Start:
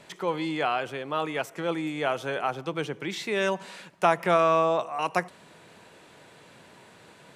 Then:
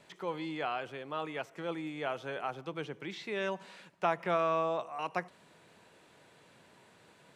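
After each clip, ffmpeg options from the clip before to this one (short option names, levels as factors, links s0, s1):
-filter_complex "[0:a]acrossover=split=5400[s0][s1];[s1]acompressor=threshold=0.00126:ratio=4:attack=1:release=60[s2];[s0][s2]amix=inputs=2:normalize=0,volume=0.376"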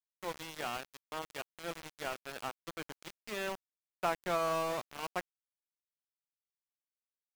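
-af "aecho=1:1:420:0.0891,aeval=exprs='val(0)*gte(abs(val(0)),0.0211)':c=same,volume=0.75"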